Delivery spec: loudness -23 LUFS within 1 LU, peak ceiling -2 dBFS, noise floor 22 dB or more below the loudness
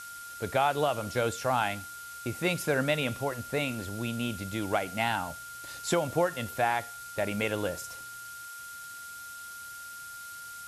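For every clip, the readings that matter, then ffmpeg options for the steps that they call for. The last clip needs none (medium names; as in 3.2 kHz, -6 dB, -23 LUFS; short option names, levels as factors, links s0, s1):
steady tone 1.4 kHz; tone level -42 dBFS; noise floor -44 dBFS; noise floor target -54 dBFS; loudness -32.0 LUFS; peak level -14.5 dBFS; loudness target -23.0 LUFS
-> -af "bandreject=f=1400:w=30"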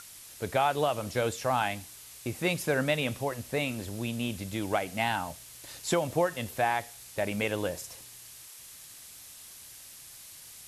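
steady tone not found; noise floor -49 dBFS; noise floor target -53 dBFS
-> -af "afftdn=nr=6:nf=-49"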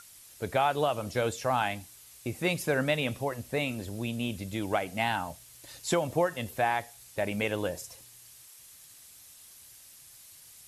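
noise floor -53 dBFS; loudness -31.0 LUFS; peak level -15.0 dBFS; loudness target -23.0 LUFS
-> -af "volume=2.51"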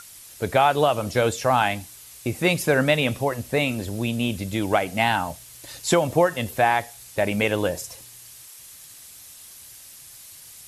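loudness -23.0 LUFS; peak level -7.0 dBFS; noise floor -45 dBFS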